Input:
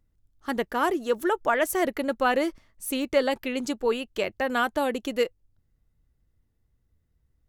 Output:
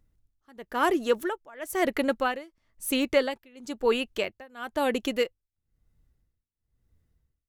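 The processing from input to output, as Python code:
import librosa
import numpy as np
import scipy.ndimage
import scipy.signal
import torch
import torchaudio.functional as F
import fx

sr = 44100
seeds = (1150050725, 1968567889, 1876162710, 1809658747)

y = x * (1.0 - 0.96 / 2.0 + 0.96 / 2.0 * np.cos(2.0 * np.pi * 1.0 * (np.arange(len(x)) / sr)))
y = fx.wow_flutter(y, sr, seeds[0], rate_hz=2.1, depth_cents=17.0)
y = fx.dynamic_eq(y, sr, hz=2500.0, q=1.0, threshold_db=-44.0, ratio=4.0, max_db=3)
y = y * librosa.db_to_amplitude(2.0)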